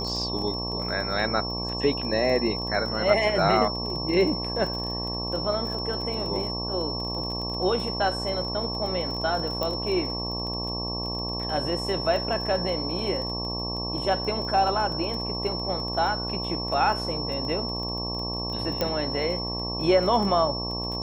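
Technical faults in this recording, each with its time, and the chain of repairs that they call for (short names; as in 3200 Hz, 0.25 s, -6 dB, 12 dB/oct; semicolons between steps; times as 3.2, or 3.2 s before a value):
buzz 60 Hz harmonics 19 -33 dBFS
crackle 22/s -32 dBFS
tone 5400 Hz -31 dBFS
9.63 pop -15 dBFS
18.81 pop -11 dBFS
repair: de-click; de-hum 60 Hz, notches 19; notch 5400 Hz, Q 30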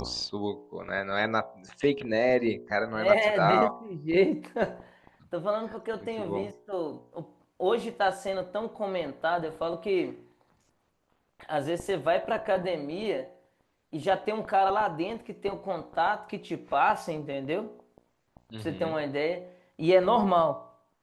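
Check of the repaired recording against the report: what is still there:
none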